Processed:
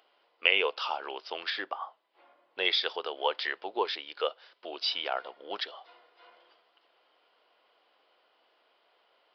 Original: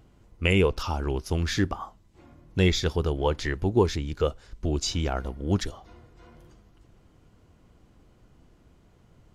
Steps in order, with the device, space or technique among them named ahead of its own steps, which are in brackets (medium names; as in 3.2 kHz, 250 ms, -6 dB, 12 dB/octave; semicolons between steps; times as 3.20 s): 1.50–2.65 s: low-pass 2.1 kHz 6 dB/octave; musical greeting card (resampled via 11.025 kHz; high-pass 550 Hz 24 dB/octave; peaking EQ 3.1 kHz +6 dB 0.51 oct)